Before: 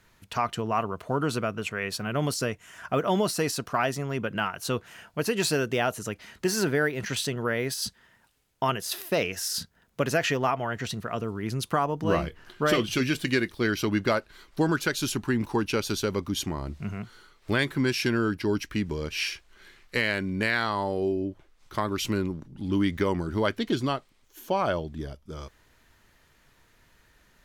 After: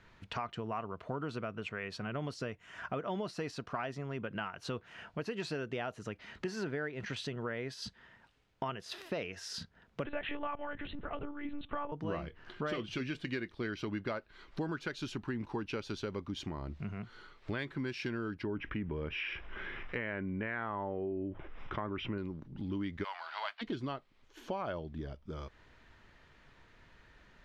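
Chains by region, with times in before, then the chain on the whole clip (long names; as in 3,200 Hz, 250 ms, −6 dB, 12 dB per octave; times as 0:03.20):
0:10.05–0:11.92: mains-hum notches 50/100/150/200/250 Hz + one-pitch LPC vocoder at 8 kHz 290 Hz
0:18.43–0:22.18: treble cut that deepens with the level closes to 2,000 Hz, closed at −22.5 dBFS + Savitzky-Golay smoothing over 25 samples + envelope flattener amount 50%
0:23.03–0:23.61: spectral envelope flattened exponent 0.6 + Chebyshev band-pass filter 680–4,700 Hz, order 4 + noise that follows the level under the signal 23 dB
whole clip: low-pass filter 3,600 Hz 12 dB per octave; downward compressor 2.5 to 1, threshold −42 dBFS; level +1 dB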